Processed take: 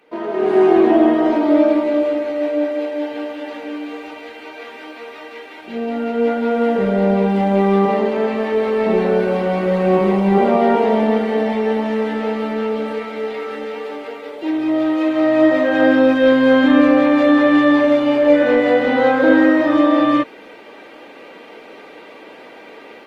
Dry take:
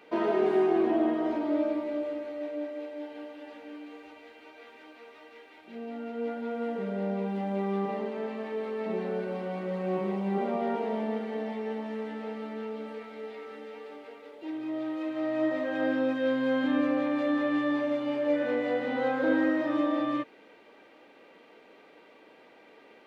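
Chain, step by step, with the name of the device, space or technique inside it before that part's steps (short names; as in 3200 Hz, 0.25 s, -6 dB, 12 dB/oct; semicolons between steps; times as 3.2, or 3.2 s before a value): video call (HPF 110 Hz 6 dB/oct; AGC gain up to 15.5 dB; gain +1 dB; Opus 24 kbps 48000 Hz)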